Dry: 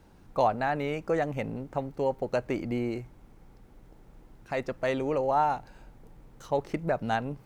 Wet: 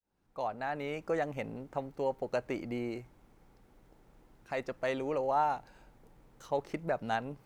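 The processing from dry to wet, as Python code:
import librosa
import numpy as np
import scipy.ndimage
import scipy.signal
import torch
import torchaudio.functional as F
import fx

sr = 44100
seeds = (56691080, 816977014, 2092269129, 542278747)

y = fx.fade_in_head(x, sr, length_s=0.99)
y = fx.low_shelf(y, sr, hz=230.0, db=-6.5)
y = y * librosa.db_to_amplitude(-3.5)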